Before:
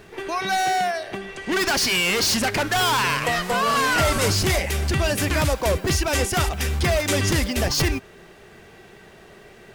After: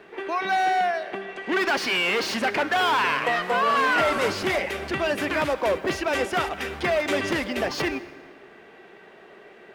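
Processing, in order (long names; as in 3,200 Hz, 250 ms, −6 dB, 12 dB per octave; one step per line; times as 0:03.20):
three-way crossover with the lows and the highs turned down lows −21 dB, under 220 Hz, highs −16 dB, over 3,400 Hz
dense smooth reverb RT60 1.7 s, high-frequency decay 0.65×, pre-delay 110 ms, DRR 17 dB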